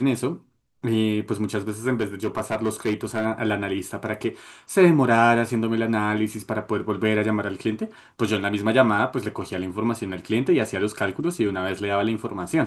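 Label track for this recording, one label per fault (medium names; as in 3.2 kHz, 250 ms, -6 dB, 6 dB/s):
1.940000	3.260000	clipped -18 dBFS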